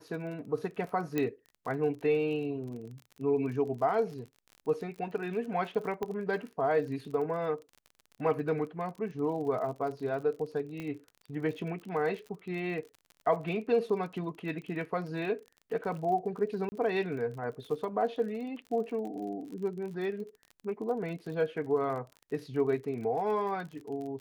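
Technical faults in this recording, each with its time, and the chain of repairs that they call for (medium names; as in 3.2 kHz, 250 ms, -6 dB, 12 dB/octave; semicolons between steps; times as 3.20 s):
crackle 35 per s -40 dBFS
1.18 s: pop -17 dBFS
6.03 s: pop -22 dBFS
10.80 s: pop -26 dBFS
16.69–16.72 s: dropout 30 ms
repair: de-click; interpolate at 16.69 s, 30 ms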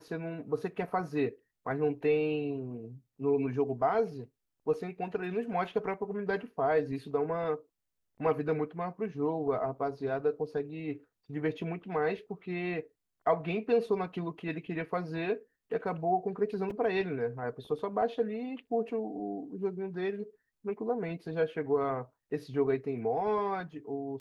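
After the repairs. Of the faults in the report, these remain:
6.03 s: pop
10.80 s: pop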